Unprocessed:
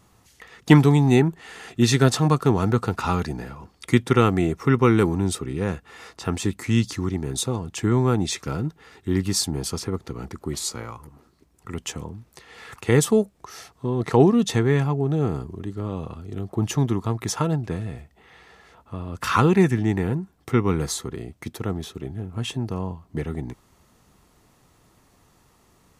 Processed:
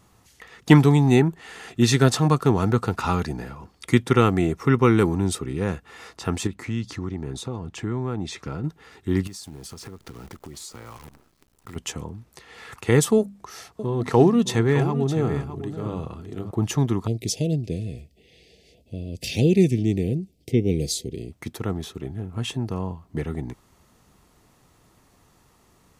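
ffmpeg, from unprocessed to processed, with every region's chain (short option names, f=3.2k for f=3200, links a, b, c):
-filter_complex "[0:a]asettb=1/sr,asplit=3[a][b][c];[a]atrim=end=6.474[d];[b]atrim=start=6.47:end=8.64,asetpts=PTS-STARTPTS,afade=t=in:d=0.004:c=qsin,afade=t=out:st=2.166:d=0.004:c=qsin,acompressor=threshold=-28dB:ratio=2:attack=3.2:release=140:knee=1:detection=peak,aemphasis=mode=reproduction:type=50kf[e];[c]atrim=start=8.636[f];[d][e]acrossfade=d=0.004:c1=hsin:c2=qsin[g];[g][f]acrossfade=d=0.004:c1=qsin:c2=hsin,asettb=1/sr,asplit=3[h][i][j];[h]atrim=end=9.274[k];[i]atrim=start=9.27:end=11.76,asetpts=PTS-STARTPTS,afade=t=in:d=0.004:c=qsin,afade=t=out:st=2.486:d=0.004:c=qsin,acrusher=bits=8:dc=4:mix=0:aa=0.000001,acompressor=threshold=-35dB:ratio=10:attack=3.2:release=140:knee=1:detection=peak[l];[j]atrim=start=11.756[m];[k][l]acrossfade=d=0.004:c1=hsin:c2=qsin[n];[n][m]acrossfade=d=0.004:c1=qsin:c2=hsin,asettb=1/sr,asplit=3[o][p][q];[o]atrim=end=13.184[r];[p]atrim=start=13.18:end=16.51,asetpts=PTS-STARTPTS,afade=t=in:d=0.004:c=qsin,afade=t=out:st=3.326:d=0.004:c=qsin,bandreject=f=50:t=h:w=6,bandreject=f=100:t=h:w=6,bandreject=f=150:t=h:w=6,bandreject=f=200:t=h:w=6,bandreject=f=250:t=h:w=6,aecho=1:1:612:0.266,atrim=end_sample=146853[s];[q]atrim=start=16.506[t];[r][s]acrossfade=d=0.004:c1=hsin:c2=qsin[u];[u][t]acrossfade=d=0.004:c1=qsin:c2=hsin,asettb=1/sr,asplit=3[v][w][x];[v]atrim=end=17.074[y];[w]atrim=start=17.07:end=21.32,asetpts=PTS-STARTPTS,afade=t=in:d=0.004:c=qsin,afade=t=out:st=4.246:d=0.004:c=qsin,asuperstop=centerf=1200:order=8:qfactor=0.7,equalizer=f=4.8k:t=o:w=0.23:g=6[z];[x]atrim=start=21.316[aa];[y][z]acrossfade=d=0.004:c1=hsin:c2=qsin[ab];[ab][aa]acrossfade=d=0.004:c1=qsin:c2=hsin"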